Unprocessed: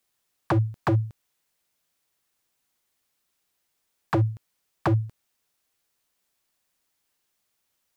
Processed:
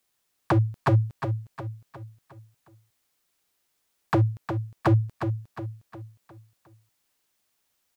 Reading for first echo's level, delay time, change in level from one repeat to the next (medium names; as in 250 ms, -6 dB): -8.0 dB, 359 ms, -7.0 dB